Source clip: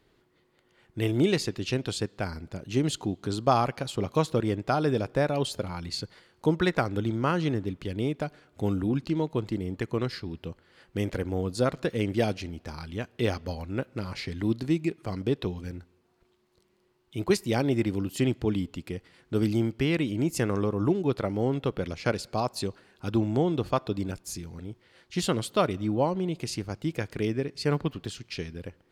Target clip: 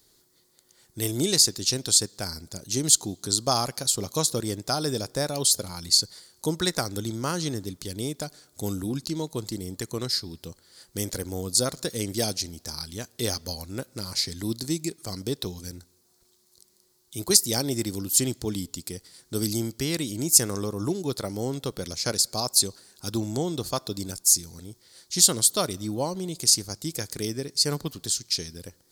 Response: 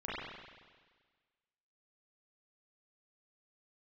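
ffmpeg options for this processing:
-af "aexciter=amount=15.9:drive=1.5:freq=4100,volume=-3dB"

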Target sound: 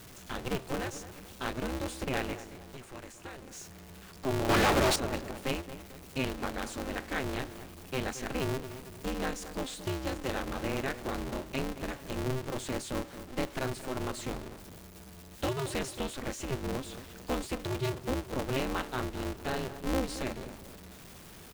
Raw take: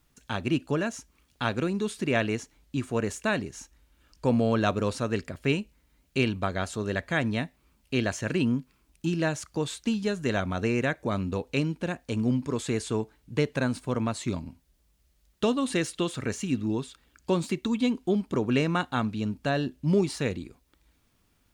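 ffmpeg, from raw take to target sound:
ffmpeg -i in.wav -filter_complex "[0:a]aeval=exprs='val(0)+0.5*0.015*sgn(val(0))':channel_layout=same,asettb=1/sr,asplit=3[link_01][link_02][link_03];[link_01]atrim=end=2.334[link_04];[link_02]atrim=start=2.33:end=3.51,asetpts=PTS-STARTPTS,afade=type=in:duration=0.004:curve=qsin,afade=type=out:start_time=1.176:duration=0.004:curve=qsin,acrossover=split=1100|2300|6500[link_05][link_06][link_07][link_08];[link_05]acompressor=threshold=-38dB:ratio=4[link_09];[link_06]acompressor=threshold=-45dB:ratio=4[link_10];[link_07]acompressor=threshold=-52dB:ratio=4[link_11];[link_08]acompressor=threshold=-50dB:ratio=4[link_12];[link_09][link_10][link_11][link_12]amix=inputs=4:normalize=0[link_13];[link_03]atrim=start=3.506[link_14];[link_04][link_13]acrossfade=duration=0.004:curve1=hsin:curve2=qsin[link_15];[link_15][link_14]acrossfade=duration=0.004:curve1=qsin:curve2=hsin,asettb=1/sr,asplit=3[link_16][link_17][link_18];[link_16]atrim=end=4.494[link_19];[link_17]atrim=start=4.49:end=4.96,asetpts=PTS-STARTPTS,afade=type=in:duration=0.004:curve=qsin,afade=type=out:start_time=0.466:duration=0.004:curve=qsin,asplit=2[link_20][link_21];[link_21]highpass=frequency=720:poles=1,volume=34dB,asoftclip=type=tanh:threshold=-10dB[link_22];[link_20][link_22]amix=inputs=2:normalize=0,lowpass=frequency=6200:poles=1,volume=-6dB[link_23];[link_18]atrim=start=4.956[link_24];[link_19][link_23]acrossfade=duration=0.004:curve1=hsin:curve2=qsin[link_25];[link_25][link_24]acrossfade=duration=0.004:curve1=qsin:curve2=hsin,asplit=2[link_26][link_27];[link_27]adelay=223,lowpass=frequency=1300:poles=1,volume=-12dB,asplit=2[link_28][link_29];[link_29]adelay=223,lowpass=frequency=1300:poles=1,volume=0.45,asplit=2[link_30][link_31];[link_31]adelay=223,lowpass=frequency=1300:poles=1,volume=0.45,asplit=2[link_32][link_33];[link_33]adelay=223,lowpass=frequency=1300:poles=1,volume=0.45,asplit=2[link_34][link_35];[link_35]adelay=223,lowpass=frequency=1300:poles=1,volume=0.45[link_36];[link_28][link_30][link_32][link_34][link_36]amix=inputs=5:normalize=0[link_37];[link_26][link_37]amix=inputs=2:normalize=0,aeval=exprs='val(0)*sgn(sin(2*PI*130*n/s))':channel_layout=same,volume=-8dB" out.wav

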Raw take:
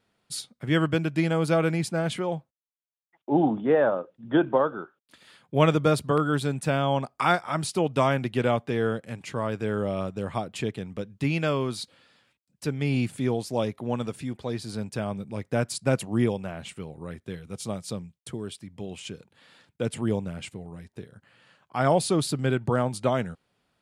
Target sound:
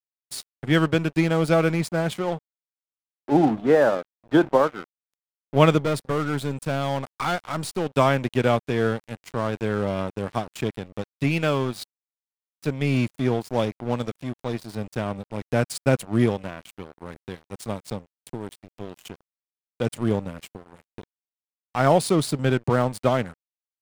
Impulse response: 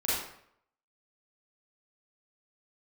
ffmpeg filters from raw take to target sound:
-filter_complex "[0:a]asettb=1/sr,asplit=3[link_01][link_02][link_03];[link_01]atrim=end=5.804[link_04];[link_02]atrim=start=5.8:end=7.93,asetpts=PTS-STARTPTS,afade=type=in:duration=0.004:curve=qsin,afade=type=out:start_time=2.126:duration=0.004:curve=qsin,aeval=exprs='(tanh(12.6*val(0)+0.25)-tanh(0.25))/12.6':channel_layout=same[link_05];[link_03]atrim=start=7.926[link_06];[link_04][link_05]acrossfade=duration=0.004:curve1=hsin:curve2=qsin[link_07];[link_07][link_06]acrossfade=duration=0.004:curve1=qsin:curve2=hsin,aeval=exprs='sgn(val(0))*max(abs(val(0))-0.0133,0)':channel_layout=same,volume=4.5dB"

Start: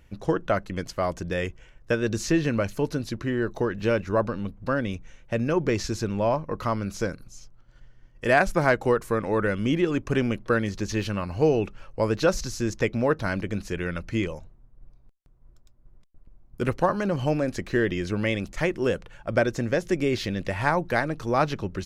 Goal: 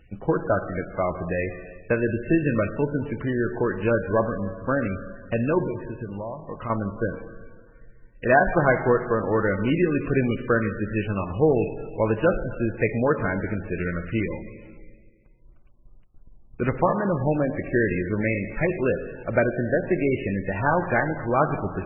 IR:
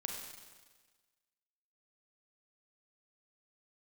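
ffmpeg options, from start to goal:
-filter_complex "[0:a]asettb=1/sr,asplit=3[link_01][link_02][link_03];[link_01]atrim=end=5.644[link_04];[link_02]atrim=start=5.64:end=6.7,asetpts=PTS-STARTPTS,afade=type=in:duration=0.004:curve=qsin,afade=type=out:start_time=1.056:duration=0.004:curve=qsin,acompressor=threshold=-31dB:ratio=16[link_05];[link_03]atrim=start=6.696[link_06];[link_04][link_05]acrossfade=duration=0.004:curve1=hsin:curve2=qsin[link_07];[link_07][link_06]acrossfade=duration=0.004:curve1=qsin:curve2=hsin,asplit=2[link_08][link_09];[1:a]atrim=start_sample=2205,asetrate=34398,aresample=44100[link_10];[link_09][link_10]afir=irnorm=-1:irlink=0,volume=-4dB[link_11];[link_08][link_11]amix=inputs=2:normalize=0,volume=-2dB" -ar 16000 -c:a libmp3lame -b:a 8k

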